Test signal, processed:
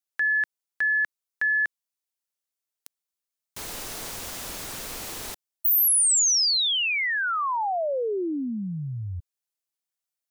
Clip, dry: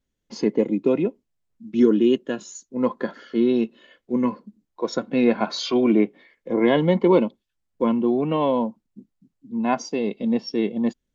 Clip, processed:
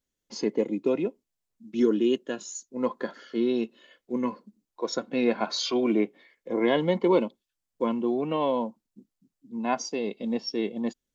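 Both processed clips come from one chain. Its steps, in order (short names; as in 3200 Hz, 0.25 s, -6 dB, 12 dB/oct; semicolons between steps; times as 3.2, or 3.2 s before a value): tone controls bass -6 dB, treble +6 dB; gain -4 dB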